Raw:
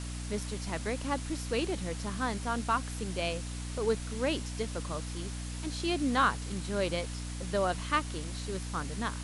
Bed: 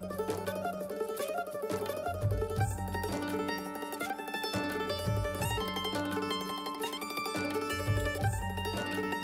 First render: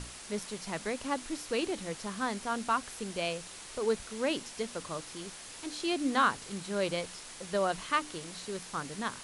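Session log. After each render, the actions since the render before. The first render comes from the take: notches 60/120/180/240/300 Hz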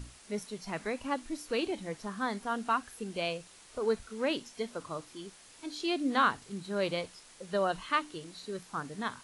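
noise print and reduce 9 dB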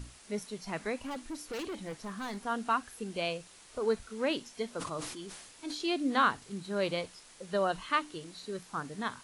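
0.99–2.39 hard clip -35.5 dBFS; 4.72–5.85 sustainer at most 47 dB/s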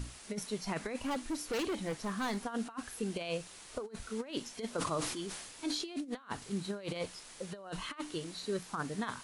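negative-ratio compressor -36 dBFS, ratio -0.5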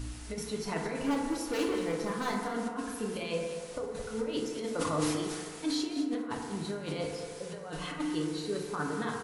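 echo 0.215 s -11.5 dB; FDN reverb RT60 1.9 s, low-frequency decay 0.85×, high-frequency decay 0.25×, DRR -0.5 dB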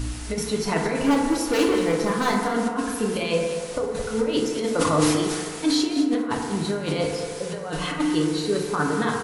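gain +10.5 dB

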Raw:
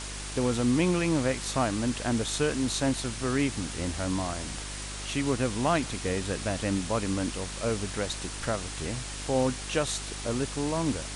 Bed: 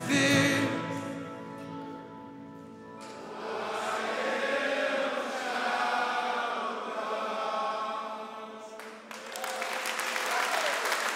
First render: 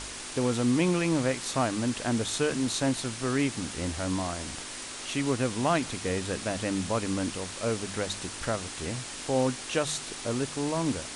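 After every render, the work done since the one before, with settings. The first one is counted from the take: de-hum 50 Hz, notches 4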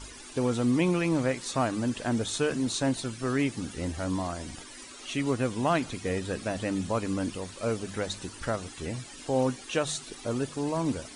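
denoiser 14 dB, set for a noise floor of -40 dBFS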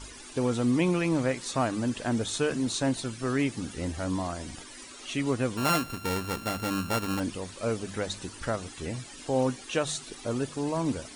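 5.57–7.2 sample sorter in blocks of 32 samples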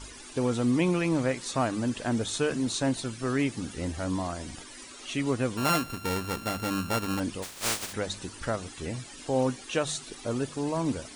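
7.42–7.92 spectral contrast lowered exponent 0.18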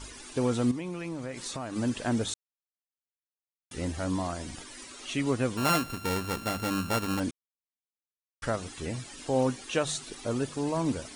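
0.71–1.76 compressor, threshold -32 dBFS; 2.34–3.71 mute; 7.31–8.42 mute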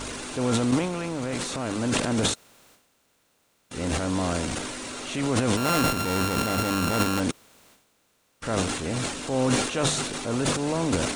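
per-bin compression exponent 0.6; transient shaper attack -5 dB, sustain +12 dB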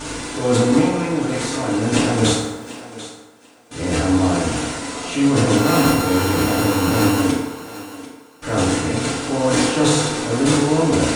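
thinning echo 0.742 s, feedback 20%, high-pass 290 Hz, level -14.5 dB; FDN reverb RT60 1.2 s, low-frequency decay 0.8×, high-frequency decay 0.55×, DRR -6.5 dB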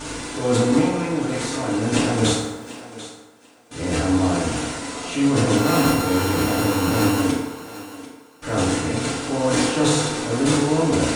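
gain -2.5 dB

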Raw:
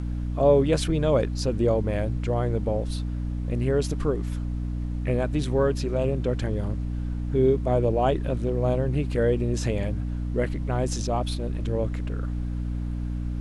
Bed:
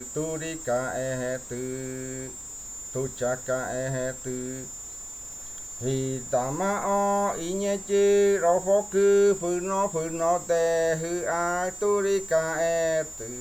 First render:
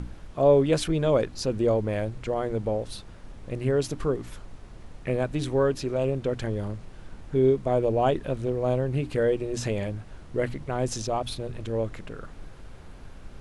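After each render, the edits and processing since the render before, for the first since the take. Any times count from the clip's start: notches 60/120/180/240/300 Hz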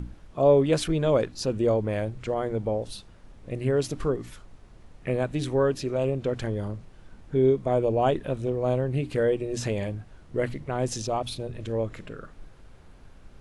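noise print and reduce 6 dB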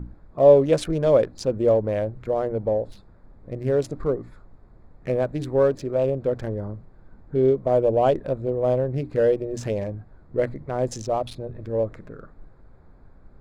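Wiener smoothing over 15 samples; dynamic EQ 560 Hz, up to +7 dB, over -37 dBFS, Q 2.2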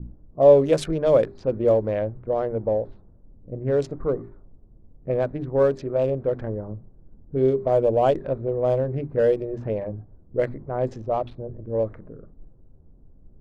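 notches 50/100/150/200/250/300/350/400 Hz; low-pass opened by the level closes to 320 Hz, open at -16 dBFS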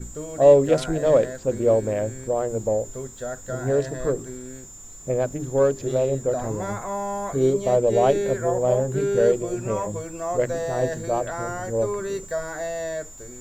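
add bed -4.5 dB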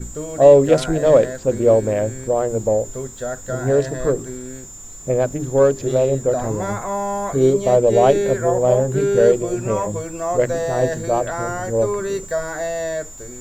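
gain +5 dB; limiter -1 dBFS, peak gain reduction 2 dB

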